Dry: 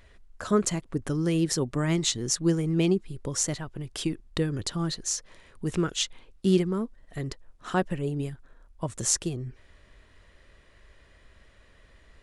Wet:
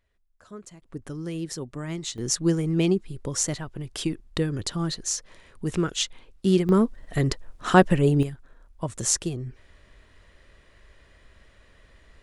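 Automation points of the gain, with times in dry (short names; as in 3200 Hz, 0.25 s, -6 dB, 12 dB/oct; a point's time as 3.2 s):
-18.5 dB
from 0.82 s -7 dB
from 2.18 s +1.5 dB
from 6.69 s +10 dB
from 8.23 s +1.5 dB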